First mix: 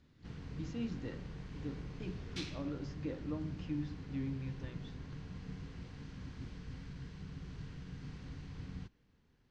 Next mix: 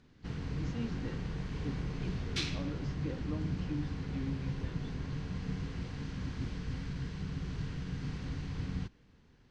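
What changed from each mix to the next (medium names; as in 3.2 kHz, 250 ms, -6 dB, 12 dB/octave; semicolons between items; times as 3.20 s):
background +8.5 dB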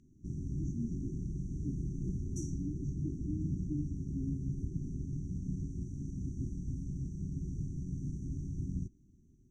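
master: add brick-wall FIR band-stop 400–5600 Hz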